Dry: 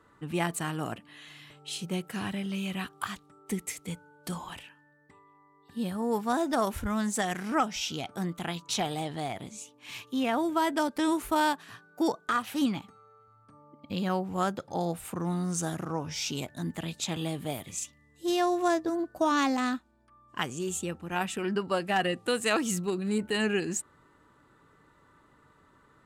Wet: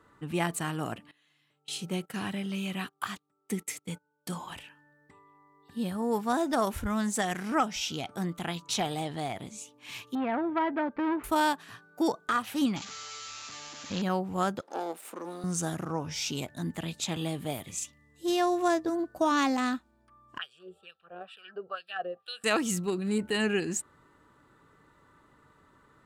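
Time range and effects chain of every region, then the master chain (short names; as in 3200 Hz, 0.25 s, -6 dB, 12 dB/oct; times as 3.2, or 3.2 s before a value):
1.11–4.51 HPF 120 Hz + gate -45 dBFS, range -20 dB
10.15–11.24 LPF 2300 Hz 24 dB/oct + core saturation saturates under 830 Hz
12.76–14.02 switching spikes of -26 dBFS + companded quantiser 4-bit + Chebyshev low-pass 7300 Hz, order 8
14.61–15.44 half-wave gain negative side -12 dB + HPF 300 Hz 24 dB/oct + low shelf 390 Hz +4 dB
20.38–22.44 LFO band-pass sine 2.2 Hz 410–4100 Hz + fixed phaser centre 1400 Hz, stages 8
whole clip: dry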